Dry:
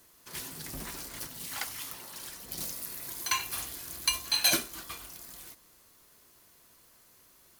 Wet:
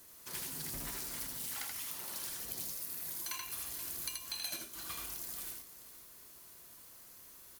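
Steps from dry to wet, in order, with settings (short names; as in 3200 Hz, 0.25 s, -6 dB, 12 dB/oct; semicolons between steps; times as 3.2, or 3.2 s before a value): high shelf 6900 Hz +6 dB; compressor 12:1, threshold -38 dBFS, peak gain reduction 21 dB; tapped delay 80/479 ms -3/-13.5 dB; gain -1 dB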